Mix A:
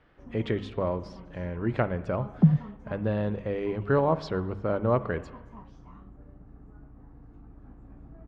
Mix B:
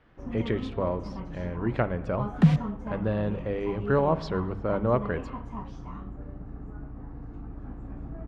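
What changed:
first sound +9.5 dB
second sound: remove Gaussian smoothing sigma 9.5 samples

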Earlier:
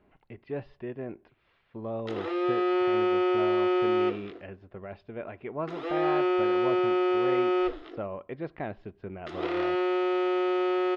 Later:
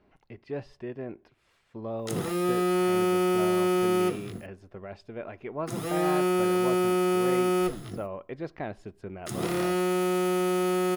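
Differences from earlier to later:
background: remove linear-phase brick-wall high-pass 270 Hz
master: remove low-pass filter 3,600 Hz 24 dB per octave

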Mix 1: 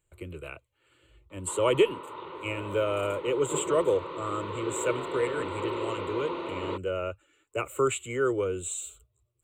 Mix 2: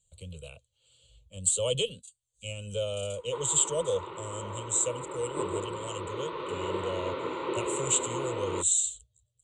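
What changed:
speech: add drawn EQ curve 220 Hz 0 dB, 330 Hz −27 dB, 490 Hz −2 dB, 1,900 Hz −24 dB, 3,200 Hz +7 dB, 6,300 Hz +13 dB, 9,900 Hz +6 dB, 14,000 Hz −27 dB
background: entry +1.85 s

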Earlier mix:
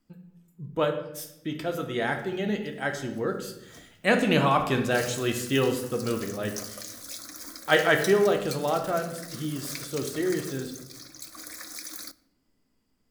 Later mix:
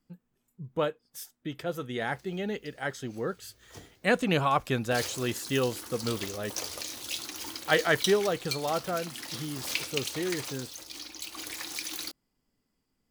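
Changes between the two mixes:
background: remove phaser with its sweep stopped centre 580 Hz, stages 8
reverb: off

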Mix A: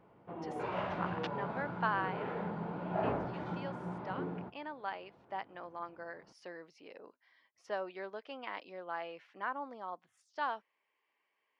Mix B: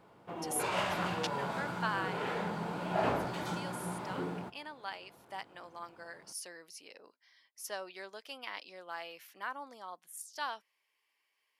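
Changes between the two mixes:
speech −7.0 dB
master: remove head-to-tape spacing loss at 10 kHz 42 dB

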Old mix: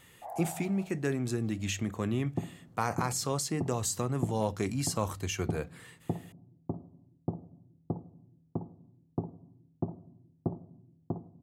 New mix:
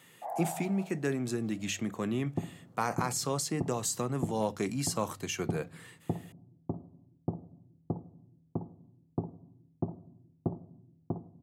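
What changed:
speech: add high-pass filter 130 Hz 24 dB per octave
first sound +4.0 dB

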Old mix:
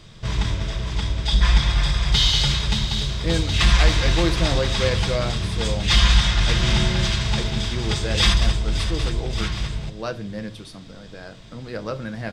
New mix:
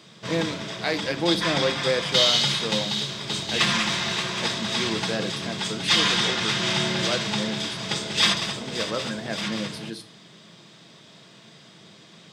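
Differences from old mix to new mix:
speech: entry −2.95 s
master: add high-pass filter 170 Hz 24 dB per octave

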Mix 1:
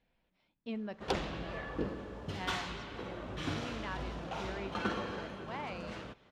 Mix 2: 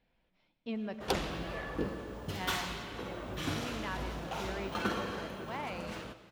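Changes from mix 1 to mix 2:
background: remove high-frequency loss of the air 70 metres
reverb: on, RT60 1.3 s

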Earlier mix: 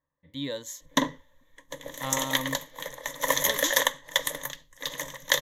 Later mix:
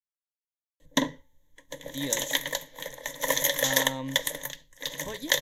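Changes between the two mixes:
speech: entry +1.60 s
master: add parametric band 1,200 Hz −12.5 dB 0.35 octaves

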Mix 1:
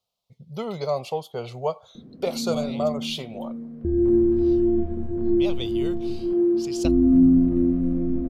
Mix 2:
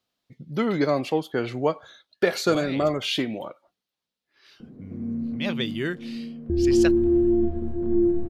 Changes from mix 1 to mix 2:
speech: remove phaser with its sweep stopped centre 710 Hz, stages 4
background: entry +2.65 s

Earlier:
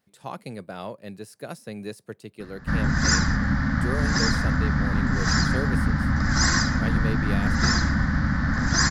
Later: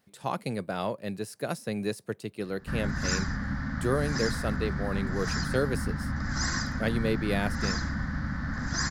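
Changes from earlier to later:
speech +4.0 dB
background −9.0 dB

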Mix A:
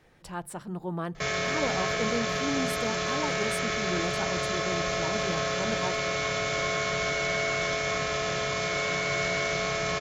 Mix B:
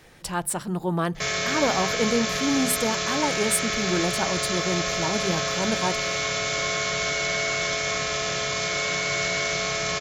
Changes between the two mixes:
speech +7.5 dB
master: add high-shelf EQ 3,200 Hz +9.5 dB

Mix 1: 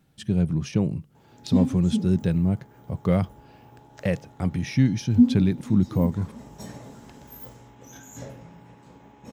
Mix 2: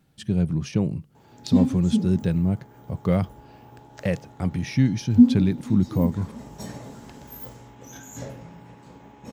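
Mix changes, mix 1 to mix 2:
background +3.0 dB
master: remove notch filter 4,500 Hz, Q 24

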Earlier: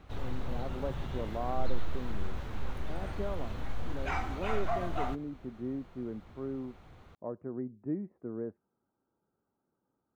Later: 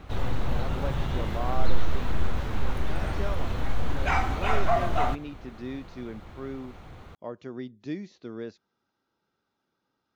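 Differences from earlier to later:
speech: remove Gaussian smoothing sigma 7.4 samples
background +9.0 dB

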